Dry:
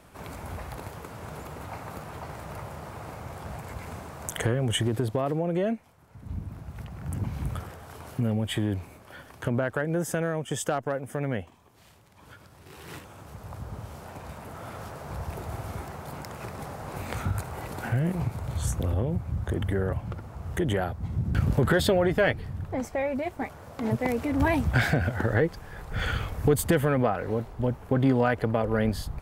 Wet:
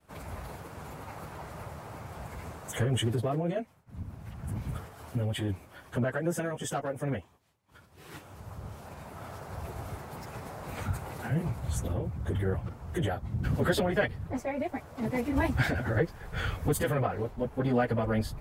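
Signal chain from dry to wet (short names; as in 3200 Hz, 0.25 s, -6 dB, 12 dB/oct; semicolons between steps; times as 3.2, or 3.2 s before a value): plain phase-vocoder stretch 0.63×; expander -50 dBFS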